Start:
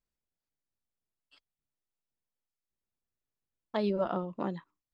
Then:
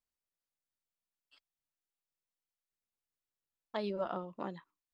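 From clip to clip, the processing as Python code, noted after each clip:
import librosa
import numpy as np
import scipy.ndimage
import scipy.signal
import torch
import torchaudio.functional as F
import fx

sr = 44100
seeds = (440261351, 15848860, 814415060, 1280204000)

y = fx.low_shelf(x, sr, hz=420.0, db=-7.0)
y = y * librosa.db_to_amplitude(-3.0)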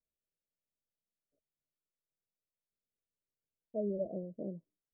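y = scipy.signal.sosfilt(scipy.signal.cheby1(6, 3, 650.0, 'lowpass', fs=sr, output='sos'), x)
y = y * librosa.db_to_amplitude(3.0)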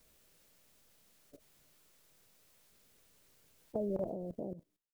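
y = fx.fade_out_tail(x, sr, length_s=1.63)
y = fx.level_steps(y, sr, step_db=14)
y = fx.spectral_comp(y, sr, ratio=2.0)
y = y * librosa.db_to_amplitude(10.5)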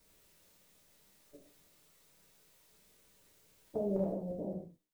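y = fx.rev_gated(x, sr, seeds[0], gate_ms=200, shape='falling', drr_db=-3.5)
y = y * librosa.db_to_amplitude(-3.5)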